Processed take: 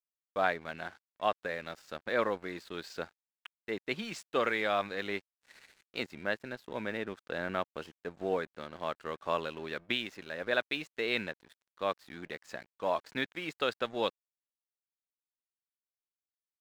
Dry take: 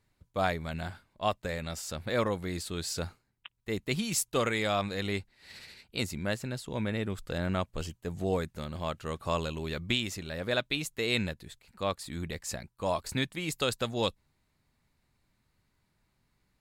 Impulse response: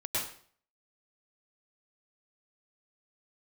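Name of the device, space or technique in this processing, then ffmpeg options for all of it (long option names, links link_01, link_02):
pocket radio on a weak battery: -af "highpass=300,lowpass=3100,aeval=exprs='sgn(val(0))*max(abs(val(0))-0.00211,0)':channel_layout=same,equalizer=frequency=1600:width_type=o:width=0.36:gain=4.5"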